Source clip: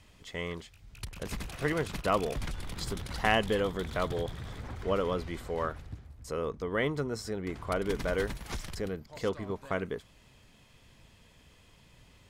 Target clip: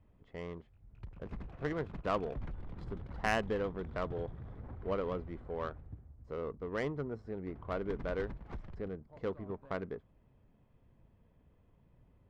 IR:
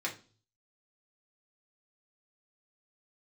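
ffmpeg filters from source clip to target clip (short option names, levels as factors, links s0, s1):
-af "adynamicsmooth=sensitivity=1.5:basefreq=930,volume=0.562"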